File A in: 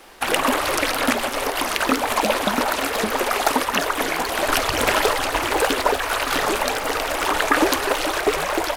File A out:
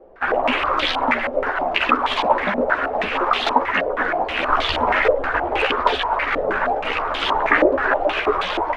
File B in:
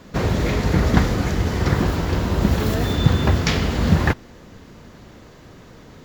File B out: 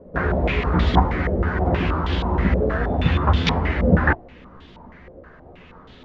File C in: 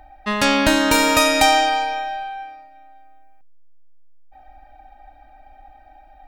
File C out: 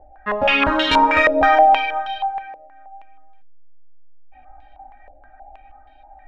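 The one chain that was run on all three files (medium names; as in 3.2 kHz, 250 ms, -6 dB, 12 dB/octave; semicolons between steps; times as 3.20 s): chorus voices 6, 0.53 Hz, delay 14 ms, depth 2.9 ms; step-sequenced low-pass 6.3 Hz 550–3400 Hz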